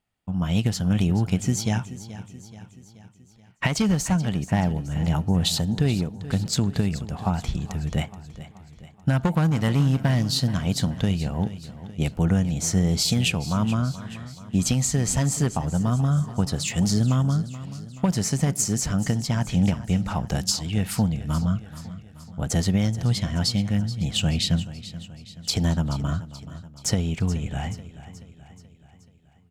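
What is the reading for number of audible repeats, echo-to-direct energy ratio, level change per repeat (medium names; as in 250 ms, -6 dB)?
4, -13.5 dB, -5.5 dB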